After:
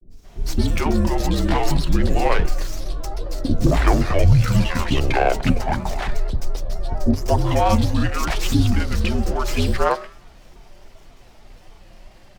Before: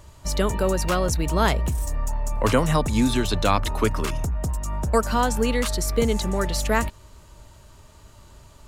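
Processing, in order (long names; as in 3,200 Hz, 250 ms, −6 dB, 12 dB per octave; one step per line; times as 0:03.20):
high-pass filter 57 Hz
parametric band 80 Hz +9 dB 1.7 octaves
hum removal 205 Hz, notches 33
frequency shifter −85 Hz
speed change −30%
granular cloud, spray 22 ms, pitch spread up and down by 3 semitones
three-band delay without the direct sound lows, highs, mids 90/220 ms, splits 370/4,700 Hz
windowed peak hold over 3 samples
level +5.5 dB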